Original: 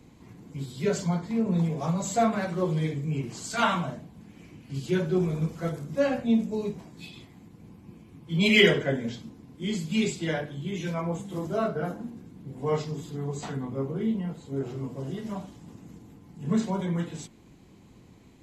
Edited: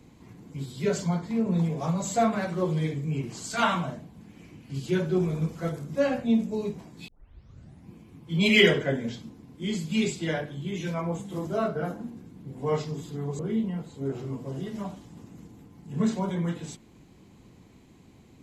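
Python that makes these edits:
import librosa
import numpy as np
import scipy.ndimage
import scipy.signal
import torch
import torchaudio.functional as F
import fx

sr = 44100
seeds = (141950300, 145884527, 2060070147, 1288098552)

y = fx.edit(x, sr, fx.tape_start(start_s=7.08, length_s=0.83),
    fx.cut(start_s=13.39, length_s=0.51), tone=tone)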